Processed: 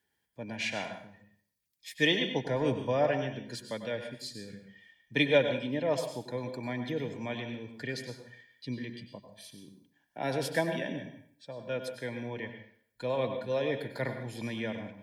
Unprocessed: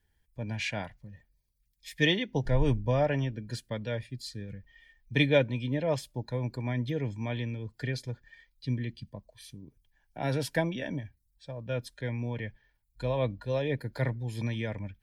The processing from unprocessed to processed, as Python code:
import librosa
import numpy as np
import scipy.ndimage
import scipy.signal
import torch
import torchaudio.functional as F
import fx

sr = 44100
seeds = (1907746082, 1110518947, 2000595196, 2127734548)

y = scipy.signal.sosfilt(scipy.signal.butter(2, 220.0, 'highpass', fs=sr, output='sos'), x)
y = fx.rev_plate(y, sr, seeds[0], rt60_s=0.55, hf_ratio=0.95, predelay_ms=85, drr_db=6.5)